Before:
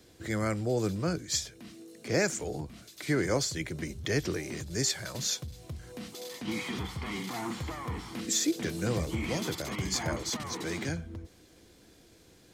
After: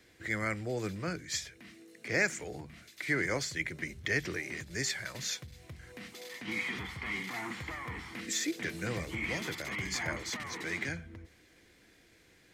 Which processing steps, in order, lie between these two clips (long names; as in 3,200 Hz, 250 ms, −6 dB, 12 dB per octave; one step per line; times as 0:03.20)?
parametric band 2,000 Hz +13 dB 0.92 octaves
hum removal 76.59 Hz, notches 3
level −6.5 dB